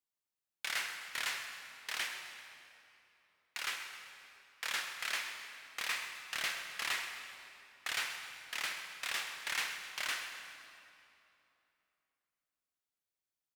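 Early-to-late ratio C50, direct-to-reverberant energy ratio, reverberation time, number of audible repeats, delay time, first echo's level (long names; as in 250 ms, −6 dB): 5.0 dB, 4.5 dB, 3.0 s, 2, 130 ms, −13.5 dB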